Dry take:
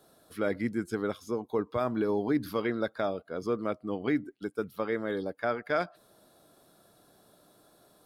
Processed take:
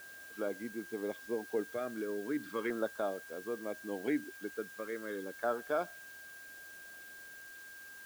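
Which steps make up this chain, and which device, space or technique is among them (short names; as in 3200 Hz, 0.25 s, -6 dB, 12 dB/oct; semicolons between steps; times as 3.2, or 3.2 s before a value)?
shortwave radio (BPF 270–2800 Hz; tremolo 0.72 Hz, depth 44%; LFO notch saw down 0.37 Hz 640–2300 Hz; whine 1600 Hz -47 dBFS; white noise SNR 18 dB); gain -2.5 dB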